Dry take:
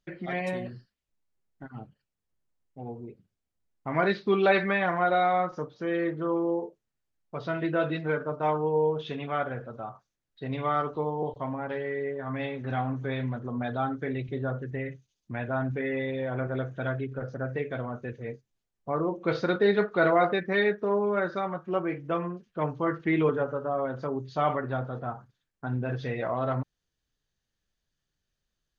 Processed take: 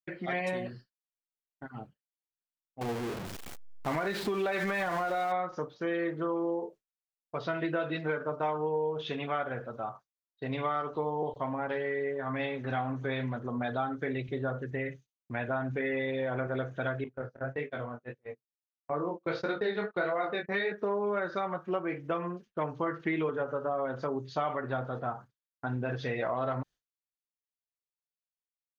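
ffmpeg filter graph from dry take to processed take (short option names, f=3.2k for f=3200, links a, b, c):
-filter_complex "[0:a]asettb=1/sr,asplit=3[a][b][c];[a]atrim=end=2.814[d];[b]atrim=start=2.81:end=5.32,asetpts=PTS-STARTPTS,afade=t=in:d=0.004:c=qsin,afade=t=out:st=2.506:d=0.004:c=qsin,aeval=exprs='val(0)+0.5*0.0266*sgn(val(0))':c=same,highshelf=f=4.1k:g=-6,acompressor=threshold=-24dB:ratio=6:attack=3.2:release=140:knee=1:detection=peak[e];[c]atrim=start=5.316[f];[d][e]acrossfade=d=0.004:c1=hsin:c2=qsin[g];[g][f]acrossfade=d=0.004:c1=qsin:c2=hsin,asettb=1/sr,asplit=3[h][i][j];[h]atrim=end=17.044[k];[i]atrim=start=17.04:end=20.72,asetpts=PTS-STARTPTS,afade=t=in:d=0.004:c=qsin,afade=t=out:st=3.676:d=0.004:c=qsin,agate=range=-26dB:threshold=-35dB:ratio=16:release=100:detection=peak,flanger=delay=19.5:depth=6.1:speed=1.6[l];[j]atrim=start=20.716[m];[k][l]acrossfade=d=0.004:c1=hsin:c2=qsin[n];[n][m]acrossfade=d=0.004:c1=qsin:c2=hsin,agate=range=-33dB:threshold=-44dB:ratio=3:detection=peak,lowshelf=f=280:g=-7,acompressor=threshold=-30dB:ratio=6,volume=2.5dB"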